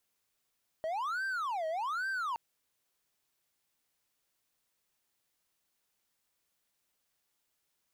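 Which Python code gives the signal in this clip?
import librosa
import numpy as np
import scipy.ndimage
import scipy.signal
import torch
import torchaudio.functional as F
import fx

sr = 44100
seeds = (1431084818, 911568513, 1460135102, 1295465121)

y = fx.siren(sr, length_s=1.52, kind='wail', low_hz=632.0, high_hz=1570.0, per_s=1.2, wave='triangle', level_db=-30.0)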